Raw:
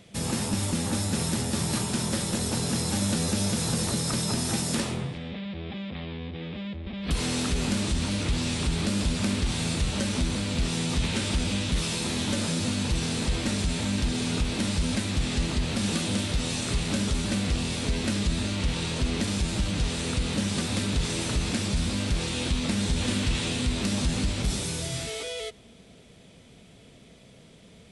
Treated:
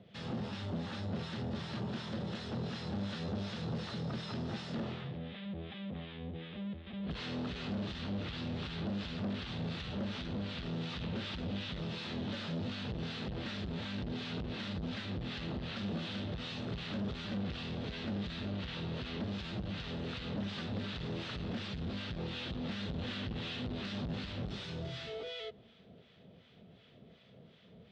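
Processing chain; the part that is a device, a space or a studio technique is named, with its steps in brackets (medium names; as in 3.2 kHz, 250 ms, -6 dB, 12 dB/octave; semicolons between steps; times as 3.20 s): guitar amplifier with harmonic tremolo (harmonic tremolo 2.7 Hz, depth 70%, crossover 950 Hz; saturation -29.5 dBFS, distortion -11 dB; cabinet simulation 87–3700 Hz, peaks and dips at 290 Hz -5 dB, 970 Hz -4 dB, 2.3 kHz -6 dB); trim -2 dB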